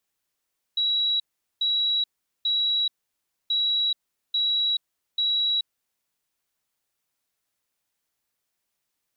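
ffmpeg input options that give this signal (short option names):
-f lavfi -i "aevalsrc='0.0944*sin(2*PI*3890*t)*clip(min(mod(mod(t,2.73),0.84),0.43-mod(mod(t,2.73),0.84))/0.005,0,1)*lt(mod(t,2.73),2.52)':d=5.46:s=44100"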